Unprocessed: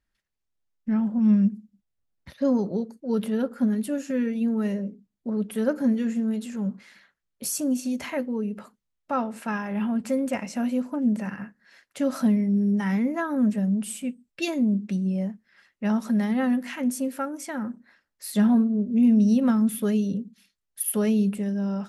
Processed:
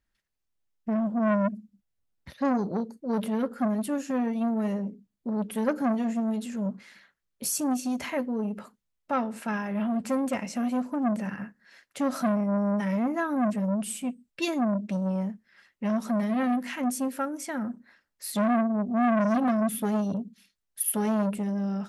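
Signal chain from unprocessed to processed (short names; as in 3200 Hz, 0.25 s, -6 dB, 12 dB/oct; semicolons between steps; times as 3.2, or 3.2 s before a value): core saturation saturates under 770 Hz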